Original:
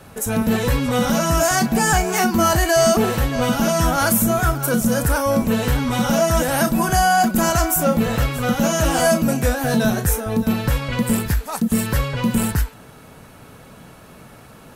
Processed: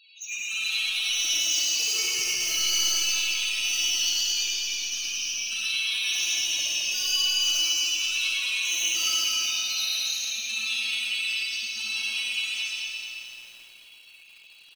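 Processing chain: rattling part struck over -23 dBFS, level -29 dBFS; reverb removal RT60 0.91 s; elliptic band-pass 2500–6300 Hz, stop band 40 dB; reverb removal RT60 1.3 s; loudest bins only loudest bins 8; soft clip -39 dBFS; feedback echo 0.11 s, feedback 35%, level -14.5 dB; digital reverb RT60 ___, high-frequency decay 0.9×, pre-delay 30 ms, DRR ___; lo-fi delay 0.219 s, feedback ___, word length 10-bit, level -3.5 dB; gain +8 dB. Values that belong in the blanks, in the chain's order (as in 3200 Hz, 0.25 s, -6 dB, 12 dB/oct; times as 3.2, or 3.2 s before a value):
2.4 s, -7 dB, 55%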